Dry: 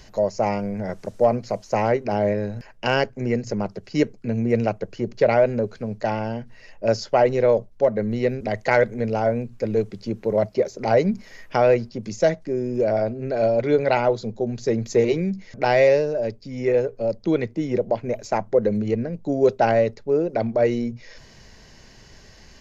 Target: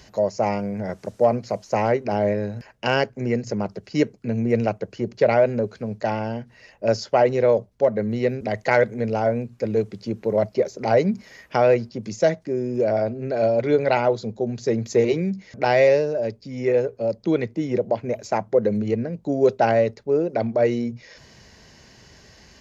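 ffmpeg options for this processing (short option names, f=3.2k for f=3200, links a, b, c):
-af "highpass=60"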